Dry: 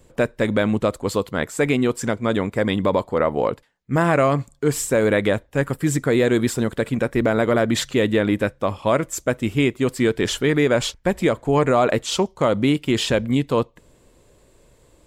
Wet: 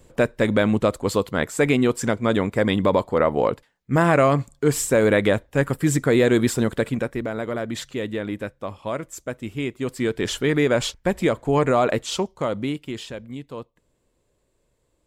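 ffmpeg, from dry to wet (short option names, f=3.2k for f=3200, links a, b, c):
-af "volume=8dB,afade=t=out:st=6.76:d=0.47:silence=0.334965,afade=t=in:st=9.58:d=0.98:silence=0.421697,afade=t=out:st=11.76:d=0.97:silence=0.446684,afade=t=out:st=12.73:d=0.36:silence=0.473151"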